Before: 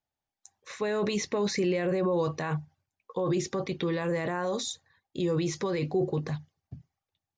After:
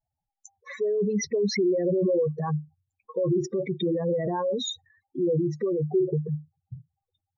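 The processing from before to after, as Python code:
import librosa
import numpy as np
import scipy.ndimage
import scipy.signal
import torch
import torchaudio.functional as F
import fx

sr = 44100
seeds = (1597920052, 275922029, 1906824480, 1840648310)

y = fx.spec_expand(x, sr, power=4.0)
y = y * 10.0 ** (4.5 / 20.0)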